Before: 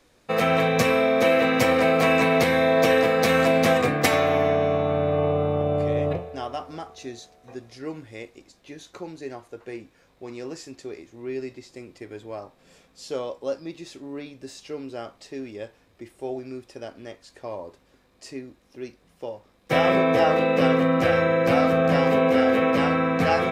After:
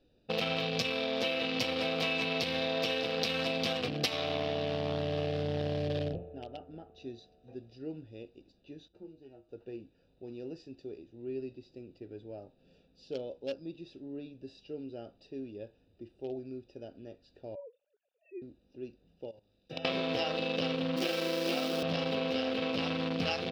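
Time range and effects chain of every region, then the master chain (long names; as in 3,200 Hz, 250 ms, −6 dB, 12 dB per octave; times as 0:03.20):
0:06.09–0:06.95: low-pass filter 2,500 Hz + amplitude modulation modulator 110 Hz, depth 30%
0:08.88–0:09.49: phase distortion by the signal itself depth 0.18 ms + spectral tilt −1.5 dB per octave + tuned comb filter 69 Hz, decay 0.23 s, harmonics odd, mix 90%
0:17.55–0:18.42: three sine waves on the formant tracks + low-shelf EQ 190 Hz −4 dB
0:19.28–0:19.85: high-shelf EQ 2,400 Hz +12 dB + hum removal 103.4 Hz, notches 27 + output level in coarse steps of 16 dB
0:20.96–0:21.83: spike at every zero crossing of −20 dBFS + Butterworth high-pass 170 Hz 72 dB per octave + parametric band 360 Hz +13 dB 0.27 octaves
whole clip: adaptive Wiener filter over 41 samples; flat-topped bell 3,800 Hz +16 dB 1.3 octaves; downward compressor, threshold −24 dBFS; level −5 dB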